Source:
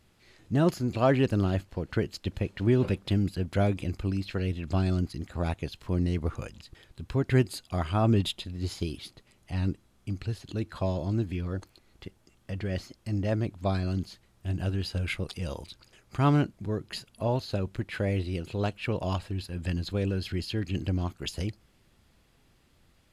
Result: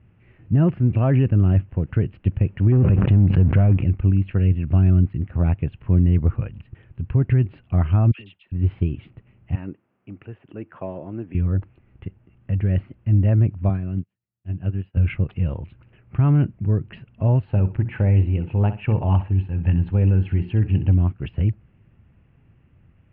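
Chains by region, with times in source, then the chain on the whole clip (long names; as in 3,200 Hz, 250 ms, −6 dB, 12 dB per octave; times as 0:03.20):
0:02.72–0:03.83: high-shelf EQ 3,100 Hz −11 dB + leveller curve on the samples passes 2 + background raised ahead of every attack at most 43 dB per second
0:08.11–0:08.52: first difference + all-pass dispersion lows, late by 81 ms, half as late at 1,200 Hz + multiband upward and downward compressor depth 100%
0:09.55–0:11.35: high-pass filter 380 Hz + high-shelf EQ 3,500 Hz −11 dB + notch filter 4,100 Hz, Q 8.2
0:13.69–0:14.97: high-pass filter 110 Hz + expander for the loud parts 2.5 to 1, over −49 dBFS
0:17.45–0:20.94: parametric band 860 Hz +12.5 dB 0.25 octaves + mains-hum notches 60/120/180/240/300/360/420 Hz + feedback echo with a high-pass in the loop 64 ms, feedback 22%, high-pass 190 Hz, level −13 dB
whole clip: Chebyshev low-pass filter 2,800 Hz, order 5; parametric band 110 Hz +15 dB 2.1 octaves; brickwall limiter −9 dBFS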